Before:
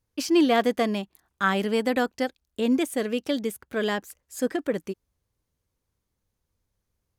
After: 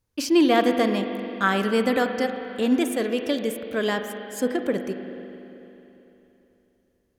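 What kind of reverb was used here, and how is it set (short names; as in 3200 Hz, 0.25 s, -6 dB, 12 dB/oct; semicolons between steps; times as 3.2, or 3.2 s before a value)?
spring tank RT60 3.3 s, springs 40/44 ms, chirp 25 ms, DRR 6.5 dB; gain +1.5 dB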